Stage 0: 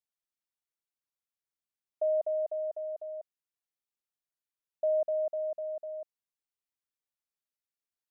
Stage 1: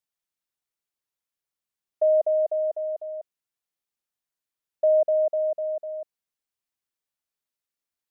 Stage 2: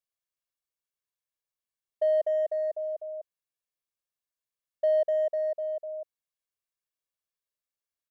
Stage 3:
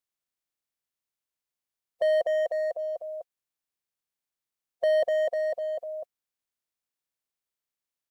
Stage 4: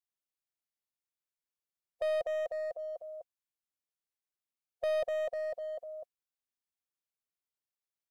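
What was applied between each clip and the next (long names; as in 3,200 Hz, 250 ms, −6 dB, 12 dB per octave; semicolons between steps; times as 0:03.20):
dynamic equaliser 490 Hz, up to +6 dB, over −41 dBFS, Q 0.91; level +3.5 dB
comb filter 1.8 ms, depth 45%; in parallel at −12 dB: hard clipping −23 dBFS, distortion −7 dB; on the sum: level −8 dB
ceiling on every frequency bin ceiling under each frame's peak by 16 dB; level +1.5 dB
stylus tracing distortion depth 0.042 ms; level −8 dB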